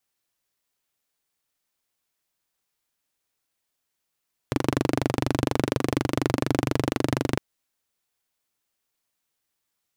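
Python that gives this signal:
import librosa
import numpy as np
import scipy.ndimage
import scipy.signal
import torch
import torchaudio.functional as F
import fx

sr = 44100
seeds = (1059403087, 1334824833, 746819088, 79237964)

y = fx.engine_single(sr, seeds[0], length_s=2.86, rpm=2900, resonances_hz=(130.0, 280.0))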